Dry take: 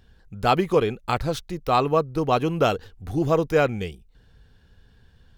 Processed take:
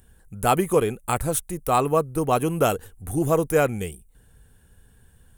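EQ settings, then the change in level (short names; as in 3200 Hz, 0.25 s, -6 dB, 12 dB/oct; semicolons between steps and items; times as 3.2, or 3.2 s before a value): resonant high shelf 6700 Hz +14 dB, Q 3; 0.0 dB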